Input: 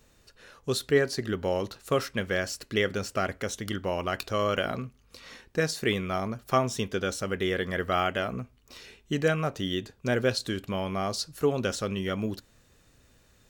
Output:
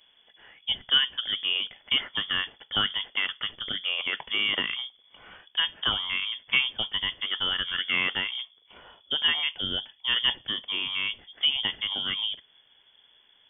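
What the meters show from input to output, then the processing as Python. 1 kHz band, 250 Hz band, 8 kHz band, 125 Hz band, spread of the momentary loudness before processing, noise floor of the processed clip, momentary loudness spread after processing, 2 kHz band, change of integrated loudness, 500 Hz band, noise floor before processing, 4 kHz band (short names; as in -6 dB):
-6.5 dB, -13.5 dB, under -40 dB, -15.5 dB, 8 LU, -62 dBFS, 7 LU, +4.0 dB, +3.0 dB, -18.5 dB, -62 dBFS, +13.0 dB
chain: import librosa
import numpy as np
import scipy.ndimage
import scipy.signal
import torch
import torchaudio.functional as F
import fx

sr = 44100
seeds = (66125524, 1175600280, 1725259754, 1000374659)

y = fx.freq_invert(x, sr, carrier_hz=3400)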